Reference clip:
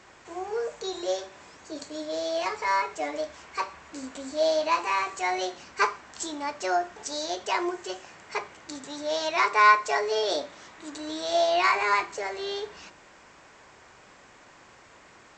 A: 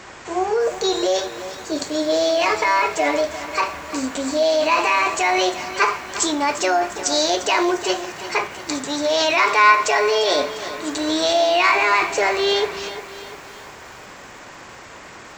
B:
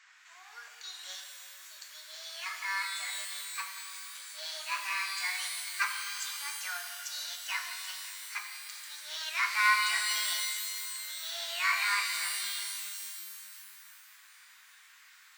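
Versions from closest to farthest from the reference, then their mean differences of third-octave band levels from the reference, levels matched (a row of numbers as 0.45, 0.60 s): A, B; 6.0, 16.0 dB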